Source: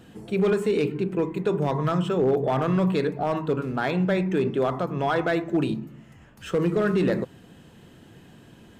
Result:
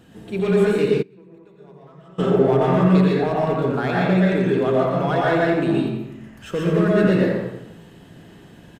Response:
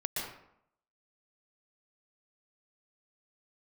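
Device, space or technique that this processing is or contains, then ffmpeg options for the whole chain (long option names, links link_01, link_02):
bathroom: -filter_complex "[0:a]aecho=1:1:87|174|261|348|435:0.398|0.179|0.0806|0.0363|0.0163[link_01];[1:a]atrim=start_sample=2205[link_02];[link_01][link_02]afir=irnorm=-1:irlink=0,asplit=3[link_03][link_04][link_05];[link_03]afade=type=out:start_time=1.01:duration=0.02[link_06];[link_04]agate=range=-26dB:threshold=-7dB:ratio=16:detection=peak,afade=type=in:start_time=1.01:duration=0.02,afade=type=out:start_time=2.18:duration=0.02[link_07];[link_05]afade=type=in:start_time=2.18:duration=0.02[link_08];[link_06][link_07][link_08]amix=inputs=3:normalize=0"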